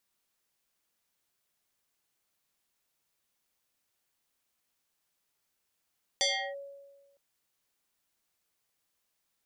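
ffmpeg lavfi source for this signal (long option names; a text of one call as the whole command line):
ffmpeg -f lavfi -i "aevalsrc='0.0708*pow(10,-3*t/1.35)*sin(2*PI*559*t+4.7*clip(1-t/0.34,0,1)*sin(2*PI*2.39*559*t))':duration=0.96:sample_rate=44100" out.wav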